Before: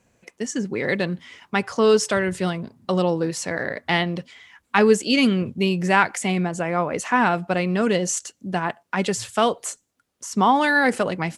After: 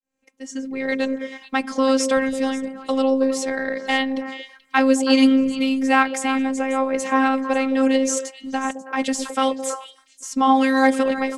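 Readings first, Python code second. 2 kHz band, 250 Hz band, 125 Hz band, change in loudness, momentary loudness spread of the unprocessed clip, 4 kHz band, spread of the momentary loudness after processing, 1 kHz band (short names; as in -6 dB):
-1.0 dB, +4.0 dB, under -20 dB, +1.0 dB, 11 LU, 0.0 dB, 12 LU, +0.5 dB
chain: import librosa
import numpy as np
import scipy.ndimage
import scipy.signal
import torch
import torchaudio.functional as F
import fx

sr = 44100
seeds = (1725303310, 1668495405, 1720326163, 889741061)

y = fx.fade_in_head(x, sr, length_s=1.09)
y = fx.robotise(y, sr, hz=266.0)
y = fx.echo_stepped(y, sr, ms=108, hz=170.0, octaves=1.4, feedback_pct=70, wet_db=-2.5)
y = y * 10.0 ** (2.5 / 20.0)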